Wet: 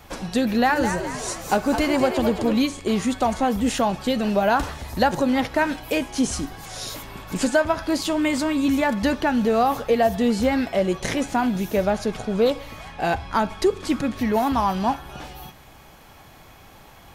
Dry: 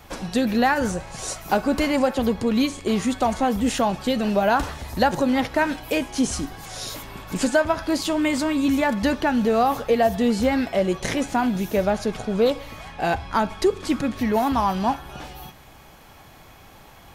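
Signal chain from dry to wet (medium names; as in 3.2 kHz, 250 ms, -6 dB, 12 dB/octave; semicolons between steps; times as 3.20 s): 0.48–2.59 s: frequency-shifting echo 212 ms, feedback 44%, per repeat +76 Hz, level -8 dB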